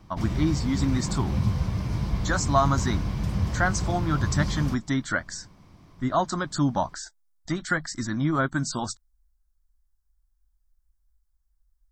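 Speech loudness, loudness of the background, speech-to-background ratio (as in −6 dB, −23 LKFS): −27.5 LKFS, −29.0 LKFS, 1.5 dB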